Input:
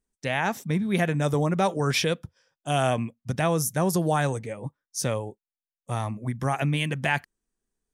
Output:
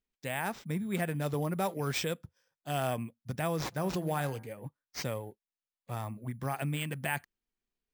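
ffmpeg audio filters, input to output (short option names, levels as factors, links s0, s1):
-filter_complex "[0:a]asplit=3[s0][s1][s2];[s0]afade=t=out:st=3.71:d=0.02[s3];[s1]bandreject=f=85.3:t=h:w=4,bandreject=f=170.6:t=h:w=4,bandreject=f=255.9:t=h:w=4,bandreject=f=341.2:t=h:w=4,bandreject=f=426.5:t=h:w=4,bandreject=f=511.8:t=h:w=4,bandreject=f=597.1:t=h:w=4,bandreject=f=682.4:t=h:w=4,bandreject=f=767.7:t=h:w=4,bandreject=f=853:t=h:w=4,bandreject=f=938.3:t=h:w=4,bandreject=f=1023.6:t=h:w=4,bandreject=f=1108.9:t=h:w=4,bandreject=f=1194.2:t=h:w=4,bandreject=f=1279.5:t=h:w=4,bandreject=f=1364.8:t=h:w=4,bandreject=f=1450.1:t=h:w=4,bandreject=f=1535.4:t=h:w=4,bandreject=f=1620.7:t=h:w=4,bandreject=f=1706:t=h:w=4,bandreject=f=1791.3:t=h:w=4,bandreject=f=1876.6:t=h:w=4,bandreject=f=1961.9:t=h:w=4,bandreject=f=2047.2:t=h:w=4,bandreject=f=2132.5:t=h:w=4,bandreject=f=2217.8:t=h:w=4,bandreject=f=2303.1:t=h:w=4,bandreject=f=2388.4:t=h:w=4,afade=t=in:st=3.71:d=0.02,afade=t=out:st=4.46:d=0.02[s4];[s2]afade=t=in:st=4.46:d=0.02[s5];[s3][s4][s5]amix=inputs=3:normalize=0,acrusher=samples=4:mix=1:aa=0.000001,volume=0.376"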